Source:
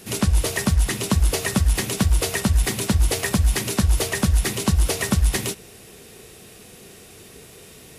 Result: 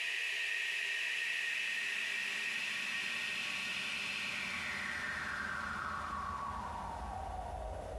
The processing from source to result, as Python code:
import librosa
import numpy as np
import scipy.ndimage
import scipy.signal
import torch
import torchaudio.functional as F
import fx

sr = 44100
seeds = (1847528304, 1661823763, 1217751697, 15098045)

y = fx.paulstretch(x, sr, seeds[0], factor=32.0, window_s=0.25, from_s=0.55)
y = fx.filter_sweep_bandpass(y, sr, from_hz=2600.0, to_hz=590.0, start_s=4.17, end_s=7.89, q=6.0)
y = fx.env_flatten(y, sr, amount_pct=50)